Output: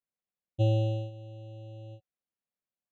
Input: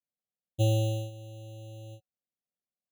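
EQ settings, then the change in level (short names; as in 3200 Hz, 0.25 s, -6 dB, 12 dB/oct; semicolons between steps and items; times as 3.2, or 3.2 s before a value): LPF 2600 Hz 12 dB/oct; 0.0 dB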